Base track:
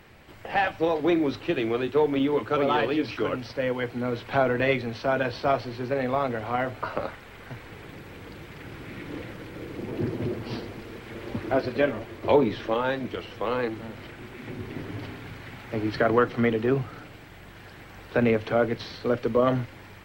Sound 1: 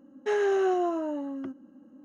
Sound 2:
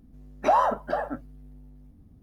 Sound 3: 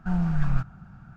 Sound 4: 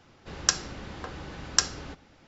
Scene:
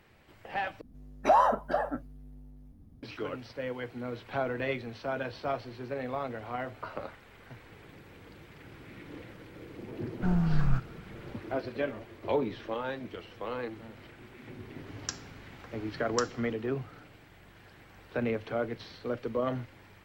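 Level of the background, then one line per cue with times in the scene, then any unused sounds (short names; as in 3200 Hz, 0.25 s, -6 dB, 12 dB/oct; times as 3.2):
base track -9 dB
0.81 replace with 2 -1.5 dB
10.17 add 3 -2 dB
14.6 add 4 -13.5 dB
not used: 1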